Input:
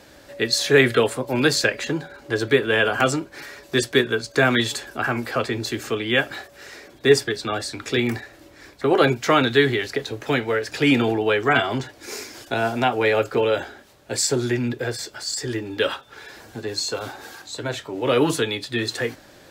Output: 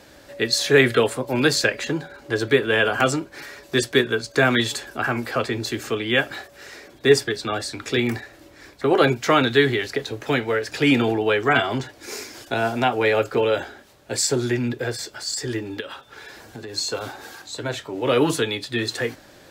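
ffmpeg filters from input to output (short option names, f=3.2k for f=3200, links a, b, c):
-filter_complex "[0:a]asplit=3[a][b][c];[a]afade=t=out:st=15.79:d=0.02[d];[b]acompressor=threshold=-30dB:ratio=16:attack=3.2:release=140:knee=1:detection=peak,afade=t=in:st=15.79:d=0.02,afade=t=out:st=16.73:d=0.02[e];[c]afade=t=in:st=16.73:d=0.02[f];[d][e][f]amix=inputs=3:normalize=0"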